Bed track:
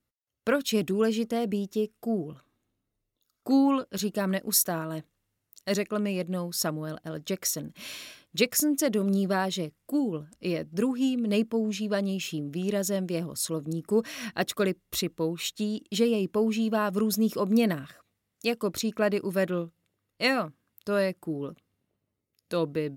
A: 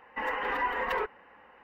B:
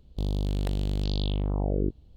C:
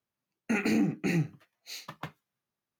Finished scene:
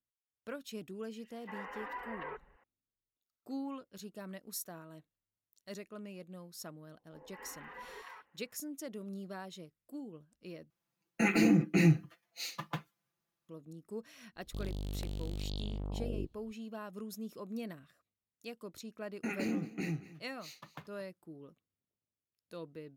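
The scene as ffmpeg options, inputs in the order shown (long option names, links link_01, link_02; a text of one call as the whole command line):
ffmpeg -i bed.wav -i cue0.wav -i cue1.wav -i cue2.wav -filter_complex "[1:a]asplit=2[link_01][link_02];[3:a]asplit=2[link_03][link_04];[0:a]volume=-18dB[link_05];[link_01]acrossover=split=180|3500[link_06][link_07][link_08];[link_07]adelay=300[link_09];[link_06]adelay=490[link_10];[link_10][link_09][link_08]amix=inputs=3:normalize=0[link_11];[link_02]acrossover=split=700|4100[link_12][link_13][link_14];[link_13]adelay=200[link_15];[link_14]adelay=230[link_16];[link_12][link_15][link_16]amix=inputs=3:normalize=0[link_17];[link_03]aecho=1:1:5.9:0.94[link_18];[2:a]highshelf=frequency=4600:gain=7.5[link_19];[link_04]aecho=1:1:225:0.133[link_20];[link_05]asplit=2[link_21][link_22];[link_21]atrim=end=10.704[link_23];[link_18]atrim=end=2.79,asetpts=PTS-STARTPTS,volume=-1.5dB[link_24];[link_22]atrim=start=13.486[link_25];[link_11]atrim=end=1.63,asetpts=PTS-STARTPTS,volume=-13dB,afade=type=in:duration=0.004:curve=hsin,afade=type=out:start_time=1.626:duration=0.004:curve=hsin,adelay=1010[link_26];[link_17]atrim=end=1.63,asetpts=PTS-STARTPTS,volume=-18dB,afade=type=in:duration=0.004:curve=hsin,afade=type=out:start_time=1.626:duration=0.004:curve=hsin,adelay=6960[link_27];[link_19]atrim=end=2.16,asetpts=PTS-STARTPTS,volume=-11.5dB,afade=type=in:duration=0.004:curve=hsin,afade=type=out:start_time=2.156:duration=0.004:curve=hsin,adelay=14360[link_28];[link_20]atrim=end=2.79,asetpts=PTS-STARTPTS,volume=-9dB,afade=type=in:duration=0.004:curve=hsin,afade=type=out:start_time=2.786:duration=0.004:curve=hsin,adelay=18740[link_29];[link_23][link_24]acrossfade=duration=0.004:curve1=hsin:curve2=hsin[link_30];[link_30][link_25]acrossfade=duration=0.004:curve1=hsin:curve2=hsin[link_31];[link_31][link_26][link_27][link_28][link_29]amix=inputs=5:normalize=0" out.wav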